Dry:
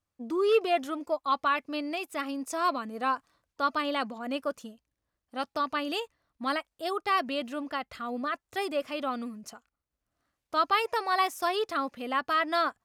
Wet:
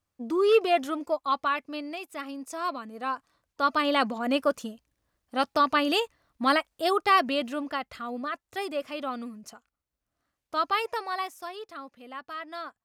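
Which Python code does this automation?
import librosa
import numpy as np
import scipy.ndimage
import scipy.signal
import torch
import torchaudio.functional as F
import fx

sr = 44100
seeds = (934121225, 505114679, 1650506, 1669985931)

y = fx.gain(x, sr, db=fx.line((0.96, 3.0), (1.99, -3.5), (3.0, -3.5), (4.06, 7.0), (6.91, 7.0), (8.23, -1.0), (10.88, -1.0), (11.54, -11.0)))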